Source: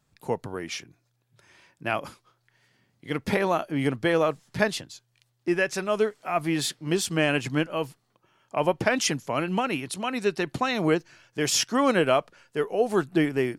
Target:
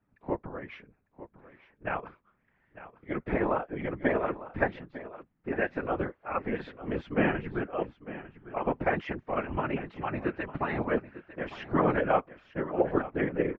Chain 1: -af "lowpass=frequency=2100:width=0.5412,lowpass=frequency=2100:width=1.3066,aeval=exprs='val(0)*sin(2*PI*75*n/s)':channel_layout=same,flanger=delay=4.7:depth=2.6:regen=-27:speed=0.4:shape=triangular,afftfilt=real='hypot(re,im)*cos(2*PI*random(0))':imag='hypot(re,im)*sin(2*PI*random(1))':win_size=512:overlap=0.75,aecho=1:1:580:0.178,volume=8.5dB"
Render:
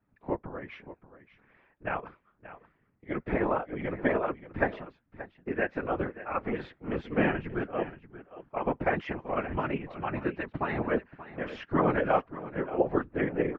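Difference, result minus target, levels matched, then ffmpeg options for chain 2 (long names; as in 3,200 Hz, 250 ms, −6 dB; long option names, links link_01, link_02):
echo 321 ms early
-af "lowpass=frequency=2100:width=0.5412,lowpass=frequency=2100:width=1.3066,aeval=exprs='val(0)*sin(2*PI*75*n/s)':channel_layout=same,flanger=delay=4.7:depth=2.6:regen=-27:speed=0.4:shape=triangular,afftfilt=real='hypot(re,im)*cos(2*PI*random(0))':imag='hypot(re,im)*sin(2*PI*random(1))':win_size=512:overlap=0.75,aecho=1:1:901:0.178,volume=8.5dB"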